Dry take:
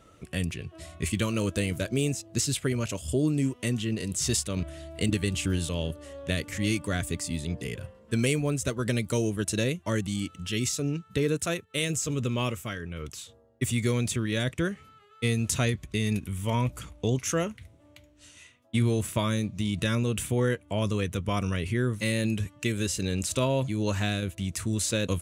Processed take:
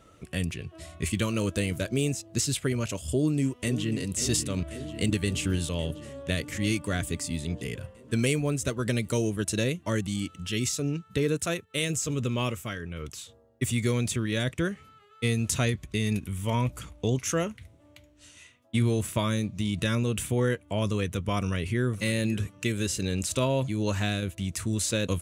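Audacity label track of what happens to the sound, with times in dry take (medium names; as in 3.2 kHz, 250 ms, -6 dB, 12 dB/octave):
3.080000	3.930000	echo throw 540 ms, feedback 75%, level -11 dB
21.380000	21.960000	echo throw 550 ms, feedback 25%, level -17.5 dB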